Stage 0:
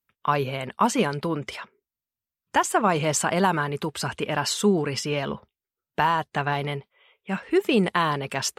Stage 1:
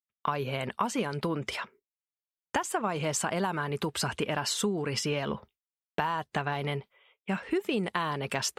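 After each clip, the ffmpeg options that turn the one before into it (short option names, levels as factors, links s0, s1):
-af "agate=range=0.0224:threshold=0.00282:ratio=3:detection=peak,acompressor=threshold=0.0398:ratio=6,volume=1.19"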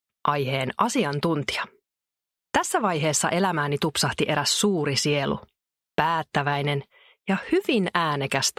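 -af "equalizer=f=3800:w=1.5:g=2,volume=2.24"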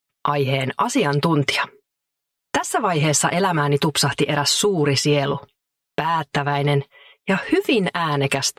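-af "aecho=1:1:7.1:0.69,alimiter=limit=0.251:level=0:latency=1:release=389,volume=1.78"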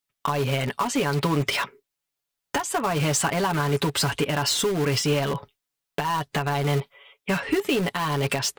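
-filter_complex "[0:a]lowshelf=f=77:g=5.5,asplit=2[s0][s1];[s1]aeval=exprs='(mod(7.08*val(0)+1,2)-1)/7.08':c=same,volume=0.316[s2];[s0][s2]amix=inputs=2:normalize=0,volume=0.531"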